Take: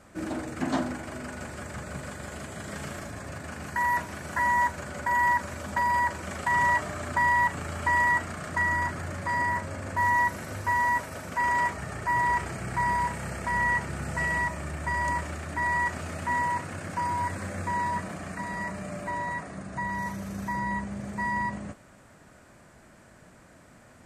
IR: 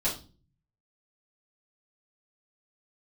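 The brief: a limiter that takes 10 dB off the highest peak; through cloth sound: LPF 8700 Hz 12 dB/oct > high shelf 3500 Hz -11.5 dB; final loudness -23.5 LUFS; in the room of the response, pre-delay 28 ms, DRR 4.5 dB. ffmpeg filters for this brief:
-filter_complex "[0:a]alimiter=level_in=1dB:limit=-24dB:level=0:latency=1,volume=-1dB,asplit=2[a][b];[1:a]atrim=start_sample=2205,adelay=28[c];[b][c]afir=irnorm=-1:irlink=0,volume=-12dB[d];[a][d]amix=inputs=2:normalize=0,lowpass=8.7k,highshelf=f=3.5k:g=-11.5,volume=11dB"

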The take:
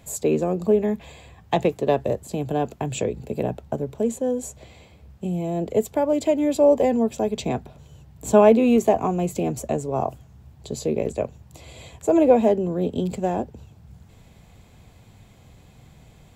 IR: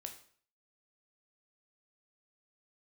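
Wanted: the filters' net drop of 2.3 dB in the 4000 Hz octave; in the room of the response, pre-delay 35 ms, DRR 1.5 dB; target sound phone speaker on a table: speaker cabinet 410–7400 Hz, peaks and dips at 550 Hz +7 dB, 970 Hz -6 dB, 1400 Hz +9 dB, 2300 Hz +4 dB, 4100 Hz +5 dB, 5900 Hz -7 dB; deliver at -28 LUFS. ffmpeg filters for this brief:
-filter_complex "[0:a]equalizer=f=4k:t=o:g=-5.5,asplit=2[a][b];[1:a]atrim=start_sample=2205,adelay=35[c];[b][c]afir=irnorm=-1:irlink=0,volume=2.5dB[d];[a][d]amix=inputs=2:normalize=0,highpass=f=410:w=0.5412,highpass=f=410:w=1.3066,equalizer=f=550:t=q:w=4:g=7,equalizer=f=970:t=q:w=4:g=-6,equalizer=f=1.4k:t=q:w=4:g=9,equalizer=f=2.3k:t=q:w=4:g=4,equalizer=f=4.1k:t=q:w=4:g=5,equalizer=f=5.9k:t=q:w=4:g=-7,lowpass=f=7.4k:w=0.5412,lowpass=f=7.4k:w=1.3066,volume=-10dB"

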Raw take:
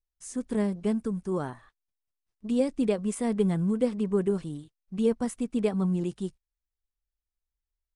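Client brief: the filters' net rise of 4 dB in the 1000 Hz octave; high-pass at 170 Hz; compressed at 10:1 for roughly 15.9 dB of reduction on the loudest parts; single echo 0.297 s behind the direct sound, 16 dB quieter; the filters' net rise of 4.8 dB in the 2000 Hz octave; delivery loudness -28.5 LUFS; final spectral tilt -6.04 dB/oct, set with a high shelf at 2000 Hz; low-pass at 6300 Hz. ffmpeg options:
-af "highpass=170,lowpass=6.3k,equalizer=f=1k:t=o:g=4,highshelf=f=2k:g=3,equalizer=f=2k:t=o:g=3,acompressor=threshold=-36dB:ratio=10,aecho=1:1:297:0.158,volume=12.5dB"

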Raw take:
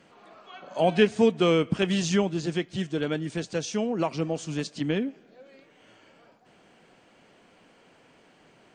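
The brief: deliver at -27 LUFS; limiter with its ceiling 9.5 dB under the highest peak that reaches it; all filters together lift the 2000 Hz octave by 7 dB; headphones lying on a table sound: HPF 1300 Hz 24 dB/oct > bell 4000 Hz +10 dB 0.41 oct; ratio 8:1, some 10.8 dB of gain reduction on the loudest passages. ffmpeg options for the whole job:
-af "equalizer=f=2k:t=o:g=8.5,acompressor=threshold=-25dB:ratio=8,alimiter=level_in=0.5dB:limit=-24dB:level=0:latency=1,volume=-0.5dB,highpass=f=1.3k:w=0.5412,highpass=f=1.3k:w=1.3066,equalizer=f=4k:t=o:w=0.41:g=10,volume=10.5dB"

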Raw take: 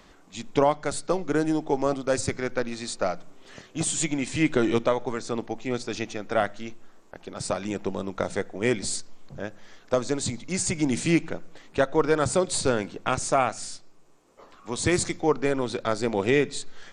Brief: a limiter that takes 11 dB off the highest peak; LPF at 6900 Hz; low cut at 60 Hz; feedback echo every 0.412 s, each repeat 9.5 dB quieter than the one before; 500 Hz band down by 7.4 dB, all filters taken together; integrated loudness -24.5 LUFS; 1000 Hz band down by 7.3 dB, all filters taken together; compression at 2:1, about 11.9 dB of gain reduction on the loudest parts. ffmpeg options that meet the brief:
-af "highpass=60,lowpass=6.9k,equalizer=f=500:t=o:g=-7.5,equalizer=f=1k:t=o:g=-7.5,acompressor=threshold=-43dB:ratio=2,alimiter=level_in=7dB:limit=-24dB:level=0:latency=1,volume=-7dB,aecho=1:1:412|824|1236|1648:0.335|0.111|0.0365|0.012,volume=18dB"

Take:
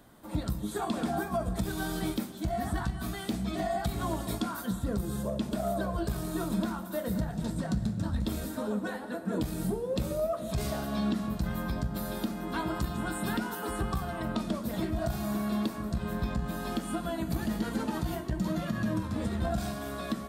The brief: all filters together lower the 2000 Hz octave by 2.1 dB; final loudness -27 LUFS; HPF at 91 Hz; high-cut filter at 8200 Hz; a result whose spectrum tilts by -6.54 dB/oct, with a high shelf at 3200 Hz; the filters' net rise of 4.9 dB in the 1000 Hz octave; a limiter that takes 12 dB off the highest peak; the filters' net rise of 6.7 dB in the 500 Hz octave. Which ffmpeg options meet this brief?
-af "highpass=91,lowpass=8.2k,equalizer=f=500:t=o:g=8,equalizer=f=1k:t=o:g=4.5,equalizer=f=2k:t=o:g=-5,highshelf=f=3.2k:g=-3.5,volume=8.5dB,alimiter=limit=-18.5dB:level=0:latency=1"

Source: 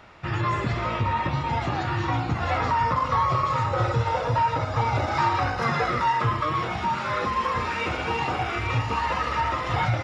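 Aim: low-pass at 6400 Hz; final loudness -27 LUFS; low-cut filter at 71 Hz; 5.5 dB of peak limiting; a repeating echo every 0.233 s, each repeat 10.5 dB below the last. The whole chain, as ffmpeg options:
-af "highpass=71,lowpass=6.4k,alimiter=limit=-17dB:level=0:latency=1,aecho=1:1:233|466|699:0.299|0.0896|0.0269,volume=-1dB"

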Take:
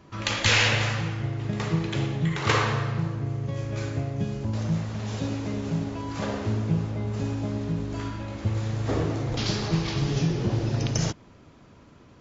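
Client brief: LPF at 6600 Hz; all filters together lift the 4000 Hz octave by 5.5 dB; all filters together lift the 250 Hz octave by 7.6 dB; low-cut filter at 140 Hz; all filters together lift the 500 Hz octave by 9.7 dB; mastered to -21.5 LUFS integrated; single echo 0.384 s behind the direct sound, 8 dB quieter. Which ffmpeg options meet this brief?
-af "highpass=140,lowpass=6.6k,equalizer=f=250:t=o:g=9,equalizer=f=500:t=o:g=9,equalizer=f=4k:t=o:g=7.5,aecho=1:1:384:0.398,volume=1dB"

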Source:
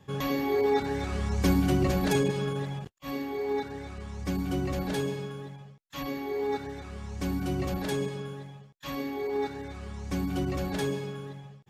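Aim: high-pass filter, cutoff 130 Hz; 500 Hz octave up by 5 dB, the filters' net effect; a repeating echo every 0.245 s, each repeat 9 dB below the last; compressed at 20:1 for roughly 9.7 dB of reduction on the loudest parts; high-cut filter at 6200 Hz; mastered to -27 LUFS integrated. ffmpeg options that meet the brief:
-af "highpass=130,lowpass=6.2k,equalizer=f=500:t=o:g=6.5,acompressor=threshold=-27dB:ratio=20,aecho=1:1:245|490|735|980:0.355|0.124|0.0435|0.0152,volume=5.5dB"

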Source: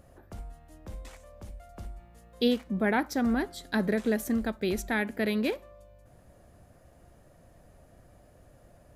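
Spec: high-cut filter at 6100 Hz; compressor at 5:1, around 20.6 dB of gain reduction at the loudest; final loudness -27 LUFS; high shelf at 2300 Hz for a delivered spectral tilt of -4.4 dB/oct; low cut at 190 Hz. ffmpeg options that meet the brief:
-af "highpass=190,lowpass=6.1k,highshelf=f=2.3k:g=4,acompressor=threshold=-45dB:ratio=5,volume=21.5dB"

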